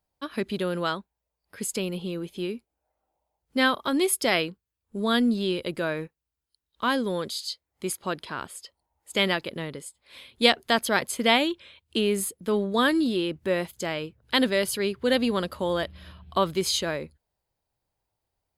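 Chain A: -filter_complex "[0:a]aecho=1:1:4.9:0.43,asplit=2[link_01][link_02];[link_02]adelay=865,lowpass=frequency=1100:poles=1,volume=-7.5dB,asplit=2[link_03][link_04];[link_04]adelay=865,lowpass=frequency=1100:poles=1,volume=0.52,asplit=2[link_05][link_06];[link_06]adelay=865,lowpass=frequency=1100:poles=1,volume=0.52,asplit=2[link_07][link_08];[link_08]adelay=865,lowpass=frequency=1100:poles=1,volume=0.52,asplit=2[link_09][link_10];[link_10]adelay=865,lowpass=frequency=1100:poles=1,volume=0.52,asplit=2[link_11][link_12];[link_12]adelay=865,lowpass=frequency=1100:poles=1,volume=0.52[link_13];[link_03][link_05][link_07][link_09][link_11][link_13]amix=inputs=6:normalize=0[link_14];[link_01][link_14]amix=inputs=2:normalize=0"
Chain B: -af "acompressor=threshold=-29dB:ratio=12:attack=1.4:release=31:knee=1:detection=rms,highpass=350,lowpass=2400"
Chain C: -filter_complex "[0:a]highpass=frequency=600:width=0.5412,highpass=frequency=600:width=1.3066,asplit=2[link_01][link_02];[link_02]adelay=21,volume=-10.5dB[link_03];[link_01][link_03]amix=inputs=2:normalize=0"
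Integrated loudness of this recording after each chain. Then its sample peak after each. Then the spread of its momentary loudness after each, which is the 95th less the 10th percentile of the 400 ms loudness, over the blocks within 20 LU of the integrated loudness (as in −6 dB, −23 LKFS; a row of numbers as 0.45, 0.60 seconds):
−25.5, −39.5, −28.5 LKFS; −4.5, −21.0, −4.5 dBFS; 15, 9, 15 LU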